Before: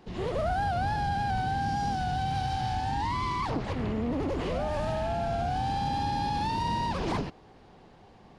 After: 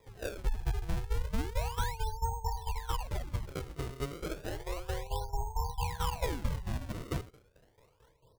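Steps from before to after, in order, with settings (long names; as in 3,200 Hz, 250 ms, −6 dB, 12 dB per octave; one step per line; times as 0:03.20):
high-shelf EQ 3,700 Hz +4.5 dB
on a send: bucket-brigade delay 71 ms, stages 2,048, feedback 70%, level −20 dB
on the sum: phase-vocoder pitch shift with formants kept −9 semitones
shaped tremolo saw down 4.5 Hz, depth 80%
gate on every frequency bin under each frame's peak −15 dB strong
comb filter 2.1 ms, depth 73%
sample-and-hold swept by an LFO 30×, swing 160% 0.32 Hz
expander for the loud parts 1.5 to 1, over −39 dBFS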